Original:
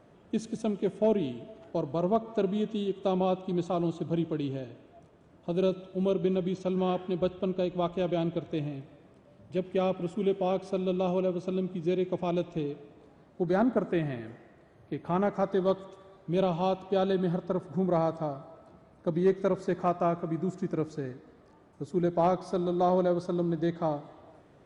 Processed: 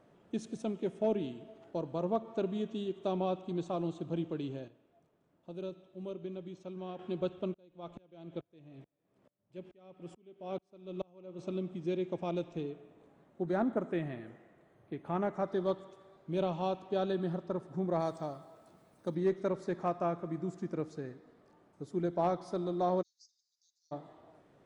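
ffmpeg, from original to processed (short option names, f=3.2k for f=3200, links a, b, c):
-filter_complex "[0:a]asettb=1/sr,asplit=3[a][b][c];[a]atrim=end=7.544[d];[b]atrim=start=7.54:end=11.39,asetpts=PTS-STARTPTS,afade=t=in:d=0.004:c=qsin,afade=t=out:st=3.846:d=0.004:c=qsin,aeval=exprs='val(0)*pow(10,-34*if(lt(mod(-2.3*n/s,1),2*abs(-2.3)/1000),1-mod(-2.3*n/s,1)/(2*abs(-2.3)/1000),(mod(-2.3*n/s,1)-2*abs(-2.3)/1000)/(1-2*abs(-2.3)/1000))/20)':c=same[e];[c]atrim=start=11.386[f];[d][e]acrossfade=d=0.004:c1=hsin:c2=qsin[g];[g][f]acrossfade=d=0.004:c1=qsin:c2=hsin,asettb=1/sr,asplit=3[h][i][j];[h]atrim=end=12.694[k];[i]atrim=start=12.69:end=15.48,asetpts=PTS-STARTPTS,afade=t=in:d=0.004:c=qsin,afade=t=out:st=2.786:d=0.004:c=qsin,equalizer=f=4.8k:w=2.7:g=-7.5[l];[j]atrim=start=15.476[m];[k][l]acrossfade=d=0.004:c1=hsin:c2=qsin[n];[n][m]acrossfade=d=0.004:c1=qsin:c2=hsin,asettb=1/sr,asplit=3[o][p][q];[o]atrim=end=18.004[r];[p]atrim=start=18:end=19.15,asetpts=PTS-STARTPTS,afade=t=in:d=0.004:c=qsin,afade=t=out:st=1.146:d=0.004:c=qsin,aemphasis=mode=production:type=75fm[s];[q]atrim=start=19.146[t];[r][s]acrossfade=d=0.004:c1=hsin:c2=qsin[u];[u][t]acrossfade=d=0.004:c1=qsin:c2=hsin,asplit=3[v][w][x];[v]afade=t=out:st=23.01:d=0.02[y];[w]asuperpass=centerf=5800:order=8:qfactor=2.3,afade=t=in:st=23.01:d=0.02,afade=t=out:st=23.91:d=0.02[z];[x]afade=t=in:st=23.91:d=0.02[aa];[y][z][aa]amix=inputs=3:normalize=0,asplit=3[ab][ac][ad];[ab]atrim=end=4.682[ae];[ac]atrim=start=4.678:end=6.992,asetpts=PTS-STARTPTS,volume=-8.5dB[af];[ad]atrim=start=6.988[ag];[ae][af]acrossfade=d=0.004:c1=hsin:c2=hsin[ah];[ah][ag]acrossfade=d=0.004:c1=hsin:c2=hsin,equalizer=f=66:w=1.7:g=-11.5,volume=-5.5dB"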